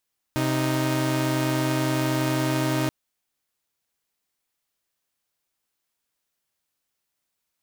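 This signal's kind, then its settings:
held notes C3/D#4 saw, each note −22 dBFS 2.53 s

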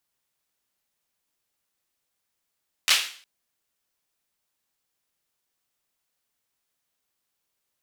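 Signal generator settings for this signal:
synth clap length 0.36 s, bursts 3, apart 12 ms, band 3,000 Hz, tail 0.46 s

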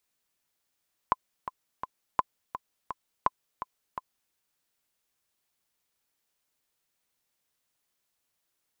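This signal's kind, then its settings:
click track 168 BPM, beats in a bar 3, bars 3, 1,020 Hz, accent 11.5 dB −9 dBFS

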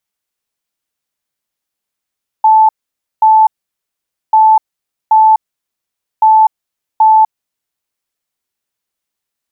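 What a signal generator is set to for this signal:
beeps in groups sine 874 Hz, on 0.25 s, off 0.53 s, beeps 2, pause 0.86 s, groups 3, −3.5 dBFS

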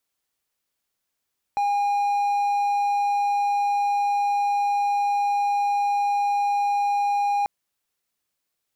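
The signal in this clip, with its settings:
tone triangle 813 Hz −17.5 dBFS 5.89 s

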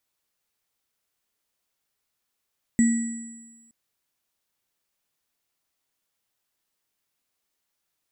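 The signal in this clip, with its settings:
inharmonic partials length 0.92 s, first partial 231 Hz, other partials 1,950/7,800 Hz, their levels −17/−12 dB, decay 1.18 s, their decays 1.06/1.80 s, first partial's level −14 dB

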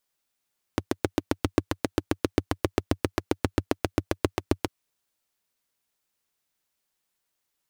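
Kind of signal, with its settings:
pulse-train model of a single-cylinder engine, steady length 3.90 s, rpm 900, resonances 95/300 Hz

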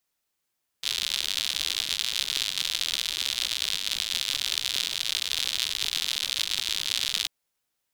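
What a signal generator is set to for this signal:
rain-like ticks over hiss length 6.44 s, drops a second 110, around 3,600 Hz, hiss −24 dB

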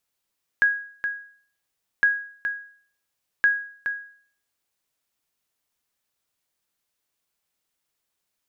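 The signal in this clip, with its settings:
ping with an echo 1,650 Hz, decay 0.52 s, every 1.41 s, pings 3, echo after 0.42 s, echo −8.5 dB −11.5 dBFS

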